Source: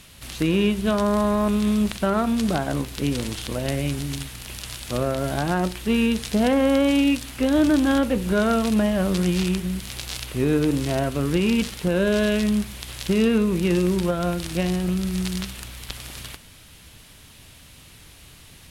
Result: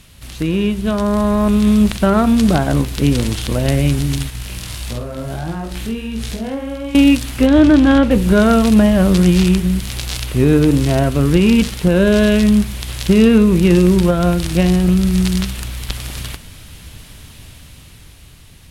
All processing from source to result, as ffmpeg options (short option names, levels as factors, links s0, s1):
-filter_complex "[0:a]asettb=1/sr,asplit=3[s0][s1][s2];[s0]atrim=end=4.304[s3];[s1]atrim=start=4.3:end=6.95,asetpts=PTS-STARTPTS,afade=t=in:d=0.004:c=qsin,afade=t=out:st=2.646:d=0.004:c=qsin,acompressor=threshold=0.0398:ratio=12:attack=3.2:release=140:knee=1:detection=peak,flanger=delay=17.5:depth=5.3:speed=1.6,asplit=2[s4][s5];[s5]adelay=49,volume=0.501[s6];[s4][s6]amix=inputs=2:normalize=0,atrim=end_sample=116865[s7];[s2]atrim=start=6.946[s8];[s3][s7]acrossfade=d=0.004:c1=hsin:c2=qsin[s9];[s9][s8]acrossfade=d=0.004:c1=qsin:c2=hsin,asettb=1/sr,asplit=3[s10][s11][s12];[s10]atrim=end=7.464[s13];[s11]atrim=start=7.46:end=8.11,asetpts=PTS-STARTPTS,afade=t=in:d=0.004:c=qsin,afade=t=out:st=0.646:d=0.004:c=qsin,lowpass=3000,aemphasis=mode=production:type=50fm[s14];[s12]atrim=start=8.106[s15];[s13][s14]acrossfade=d=0.004:c1=hsin:c2=qsin[s16];[s16][s15]acrossfade=d=0.004:c1=qsin:c2=hsin,lowshelf=f=180:g=8,dynaudnorm=f=170:g=17:m=3.76"